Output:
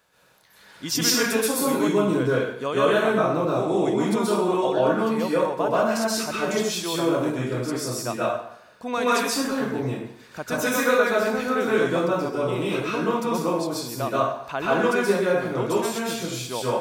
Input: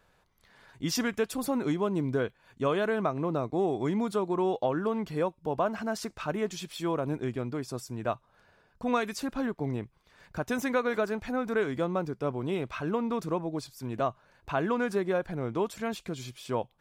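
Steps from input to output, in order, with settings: high-pass 220 Hz 6 dB/octave; treble shelf 3.5 kHz +8.5 dB; plate-style reverb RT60 0.73 s, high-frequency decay 0.85×, pre-delay 115 ms, DRR -7.5 dB

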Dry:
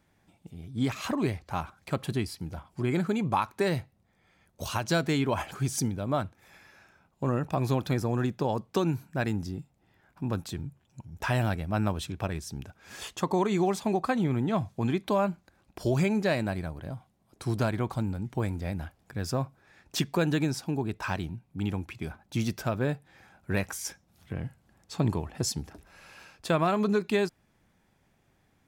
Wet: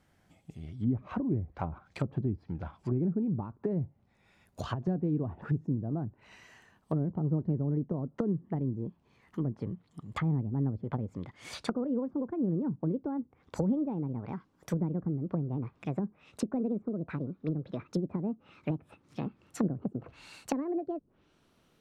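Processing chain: gliding tape speed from 92% -> 171%; low-pass that closes with the level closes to 310 Hz, closed at -26.5 dBFS

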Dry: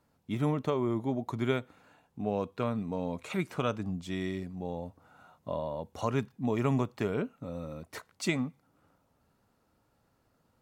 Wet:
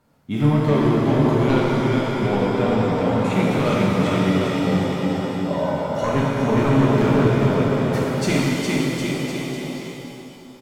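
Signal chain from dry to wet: peaking EQ 72 Hz -7 dB 0.68 oct; on a send: bouncing-ball echo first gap 410 ms, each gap 0.85×, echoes 5; on the sum: sine folder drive 7 dB, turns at -12.5 dBFS; tone controls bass +3 dB, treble -2 dB; pitch-shifted reverb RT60 2.5 s, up +7 st, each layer -8 dB, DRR -4.5 dB; trim -4.5 dB

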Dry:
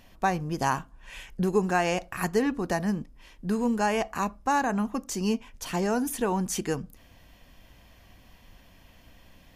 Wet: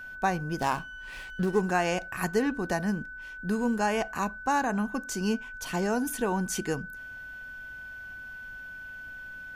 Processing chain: whistle 1.5 kHz -38 dBFS; 0.60–1.61 s: sliding maximum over 5 samples; trim -1.5 dB

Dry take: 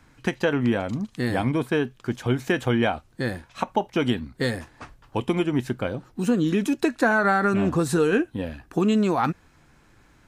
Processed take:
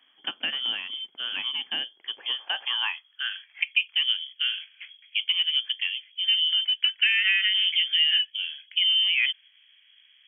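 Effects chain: frequency inversion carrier 3.3 kHz; high-pass sweep 270 Hz -> 2.3 kHz, 1.74–3.59 s; trim -7.5 dB

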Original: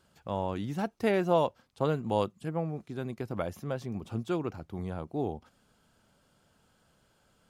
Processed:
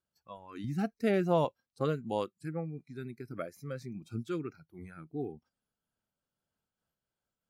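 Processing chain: spectral noise reduction 20 dB; 0.64–1.45 s: bass shelf 190 Hz +10.5 dB; random flutter of the level, depth 55%

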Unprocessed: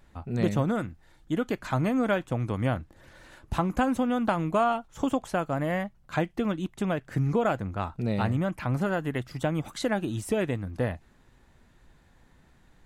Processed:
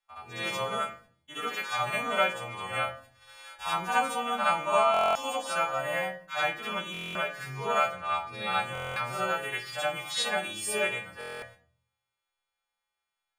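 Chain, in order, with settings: partials quantised in pitch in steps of 2 st; speed mistake 25 fps video run at 24 fps; gate -49 dBFS, range -25 dB; three-band isolator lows -23 dB, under 600 Hz, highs -15 dB, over 3.7 kHz; reverse echo 66 ms -7 dB; harmonic-percussive split percussive -17 dB; peaking EQ 11 kHz +7 dB 1.8 oct; simulated room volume 440 m³, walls furnished, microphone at 1.2 m; buffer glitch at 4.92/6.92/8.73/11.19 s, samples 1024, times 9; trim +3.5 dB

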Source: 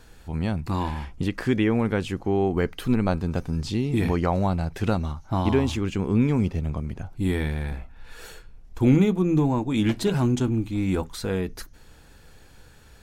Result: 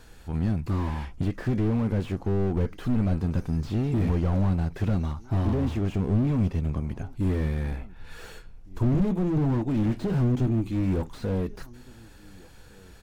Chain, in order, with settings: echo from a far wall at 250 m, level -27 dB; slew-rate limiter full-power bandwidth 19 Hz

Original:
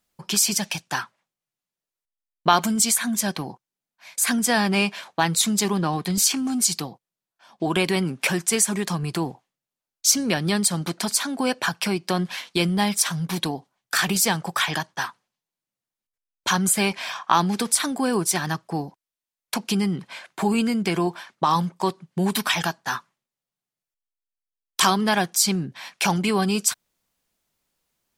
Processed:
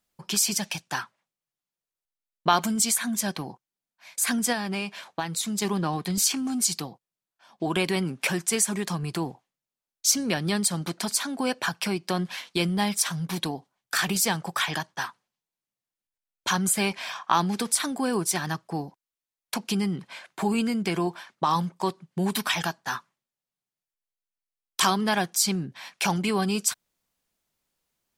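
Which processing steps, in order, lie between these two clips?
4.52–5.62 s: compression 6:1, threshold -22 dBFS, peak gain reduction 8 dB; trim -3.5 dB

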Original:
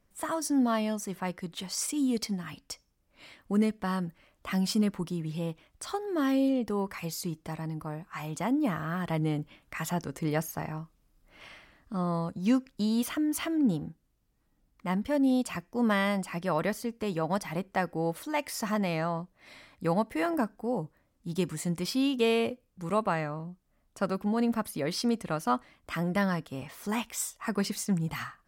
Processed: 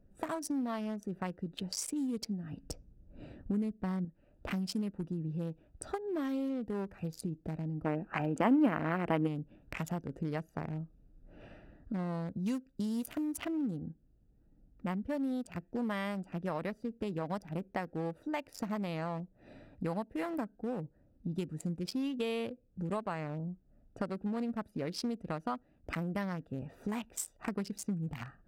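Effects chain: local Wiener filter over 41 samples; 2.63–4.05 s: bass shelf 350 Hz +9.5 dB; compression 4:1, threshold -44 dBFS, peak gain reduction 23 dB; 7.84–9.27 s: time-frequency box 210–3200 Hz +9 dB; 12.38–13.32 s: peaking EQ 14 kHz +13 dB 1.8 oct; trim +8 dB

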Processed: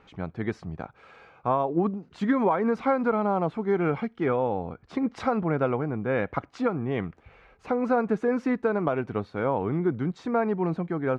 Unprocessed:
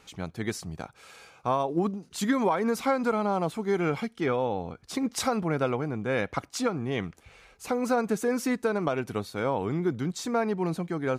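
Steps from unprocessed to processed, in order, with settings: low-pass 1.9 kHz 12 dB/octave; trim +2 dB

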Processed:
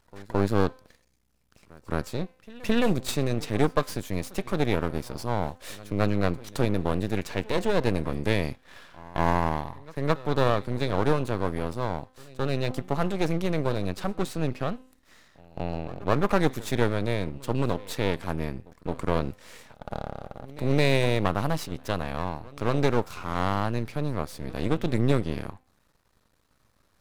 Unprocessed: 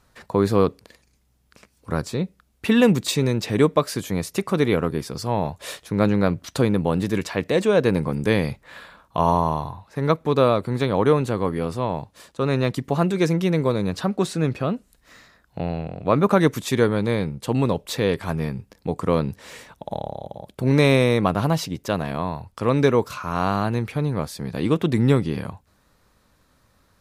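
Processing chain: de-hum 257.7 Hz, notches 17; half-wave rectifier; pre-echo 217 ms -21.5 dB; trim -2.5 dB

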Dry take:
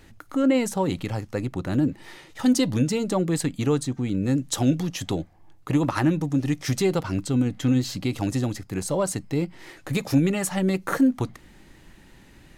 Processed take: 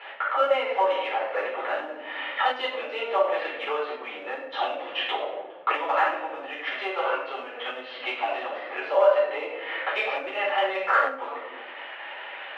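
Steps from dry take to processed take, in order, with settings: elliptic low-pass 3.1 kHz, stop band 60 dB; in parallel at -10.5 dB: hard clipper -21.5 dBFS, distortion -10 dB; on the sum: simulated room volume 200 m³, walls mixed, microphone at 4.3 m; compression 6:1, threshold -21 dBFS, peak gain reduction 19.5 dB; Chebyshev high-pass 540 Hz, order 4; trim +7 dB

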